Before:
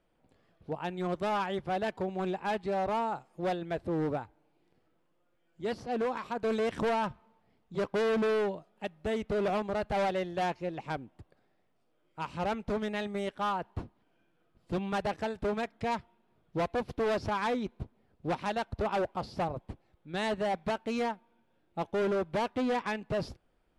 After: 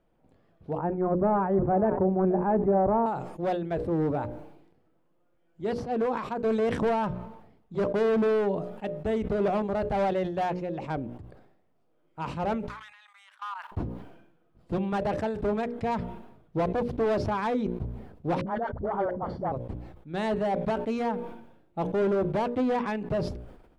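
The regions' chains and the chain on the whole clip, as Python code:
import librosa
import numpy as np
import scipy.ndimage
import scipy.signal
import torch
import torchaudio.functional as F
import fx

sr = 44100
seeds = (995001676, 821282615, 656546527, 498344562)

y = fx.chain(x, sr, fx.lowpass(hz=1700.0, slope=24),
    fx.tilt_shelf(db=6.0, hz=1300.0),
    fx.echo_single(ms=479, db=-18.0), at=(0.78, 3.06))
y = fx.chain(y, sr, fx.steep_highpass(hz=1000.0, slope=48),
    fx.level_steps(step_db=18), at=(12.68, 13.72))
y = fx.chain(y, sr, fx.savgol(points=41),
    fx.low_shelf(hz=400.0, db=-5.0),
    fx.dispersion(late='highs', ms=63.0, hz=510.0), at=(18.41, 19.52))
y = fx.tilt_shelf(y, sr, db=5.5, hz=1400.0)
y = fx.hum_notches(y, sr, base_hz=60, count=10)
y = fx.sustainer(y, sr, db_per_s=63.0)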